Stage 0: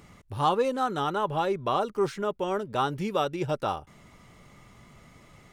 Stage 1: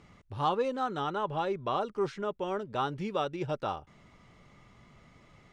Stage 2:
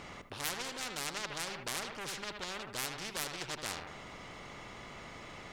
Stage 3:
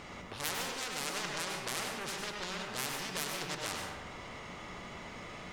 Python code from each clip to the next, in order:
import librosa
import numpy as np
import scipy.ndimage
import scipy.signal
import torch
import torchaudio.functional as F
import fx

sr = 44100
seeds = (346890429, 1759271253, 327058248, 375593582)

y1 = scipy.signal.sosfilt(scipy.signal.butter(2, 5600.0, 'lowpass', fs=sr, output='sos'), x)
y1 = y1 * librosa.db_to_amplitude(-4.5)
y2 = fx.self_delay(y1, sr, depth_ms=0.39)
y2 = fx.echo_filtered(y2, sr, ms=78, feedback_pct=36, hz=2300.0, wet_db=-11.5)
y2 = fx.spectral_comp(y2, sr, ratio=4.0)
y2 = y2 * librosa.db_to_amplitude(2.0)
y3 = fx.rev_plate(y2, sr, seeds[0], rt60_s=0.77, hf_ratio=0.55, predelay_ms=85, drr_db=1.5)